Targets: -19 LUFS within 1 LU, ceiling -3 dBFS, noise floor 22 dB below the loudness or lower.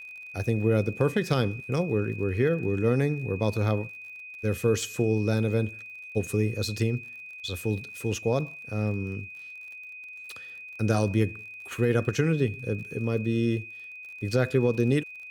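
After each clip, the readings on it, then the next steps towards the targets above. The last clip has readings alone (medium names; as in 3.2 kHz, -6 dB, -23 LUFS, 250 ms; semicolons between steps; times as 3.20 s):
tick rate 48 per s; steady tone 2.5 kHz; tone level -40 dBFS; loudness -27.5 LUFS; peak level -10.5 dBFS; loudness target -19.0 LUFS
-> de-click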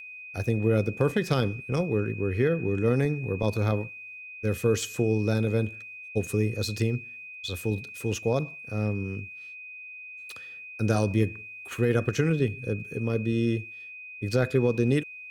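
tick rate 1.4 per s; steady tone 2.5 kHz; tone level -40 dBFS
-> band-stop 2.5 kHz, Q 30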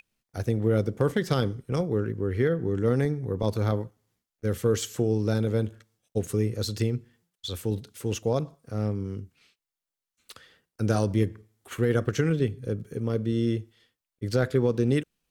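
steady tone not found; loudness -27.5 LUFS; peak level -10.5 dBFS; loudness target -19.0 LUFS
-> trim +8.5 dB; peak limiter -3 dBFS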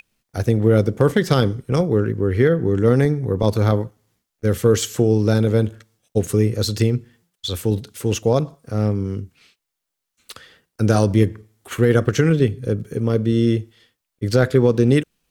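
loudness -19.5 LUFS; peak level -3.0 dBFS; noise floor -81 dBFS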